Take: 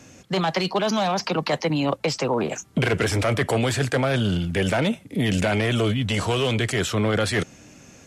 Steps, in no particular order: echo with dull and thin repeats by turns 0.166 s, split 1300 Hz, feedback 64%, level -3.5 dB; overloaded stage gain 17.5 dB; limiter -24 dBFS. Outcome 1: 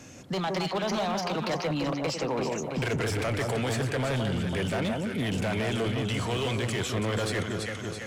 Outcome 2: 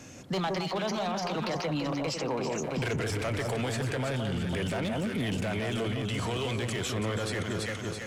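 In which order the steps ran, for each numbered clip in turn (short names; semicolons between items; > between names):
echo with dull and thin repeats by turns > overloaded stage > limiter; overloaded stage > echo with dull and thin repeats by turns > limiter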